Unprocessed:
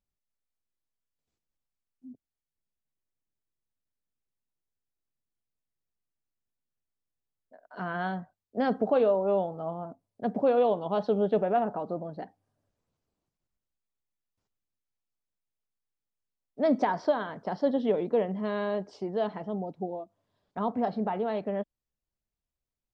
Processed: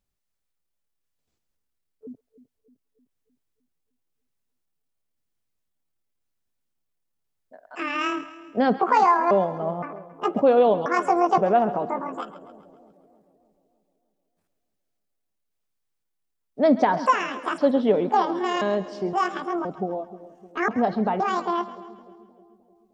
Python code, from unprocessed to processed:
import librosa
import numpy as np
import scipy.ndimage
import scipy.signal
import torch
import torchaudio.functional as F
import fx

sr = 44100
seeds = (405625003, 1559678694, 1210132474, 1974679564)

y = fx.pitch_trill(x, sr, semitones=9.5, every_ms=517)
y = fx.echo_split(y, sr, split_hz=630.0, low_ms=306, high_ms=135, feedback_pct=52, wet_db=-15.0)
y = y * 10.0 ** (6.5 / 20.0)